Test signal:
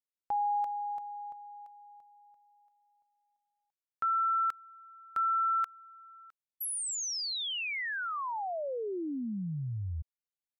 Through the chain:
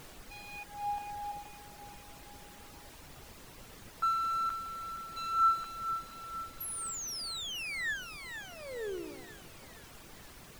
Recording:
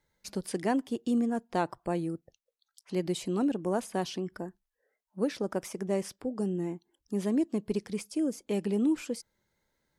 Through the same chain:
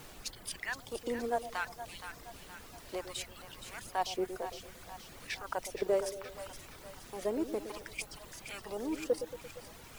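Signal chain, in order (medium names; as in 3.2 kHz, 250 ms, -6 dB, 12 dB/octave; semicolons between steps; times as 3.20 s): partial rectifier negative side -3 dB; waveshaping leveller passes 1; level held to a coarse grid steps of 10 dB; LFO high-pass sine 0.64 Hz 450–3300 Hz; added noise pink -50 dBFS; reverb removal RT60 0.83 s; two-band feedback delay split 690 Hz, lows 114 ms, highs 470 ms, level -9.5 dB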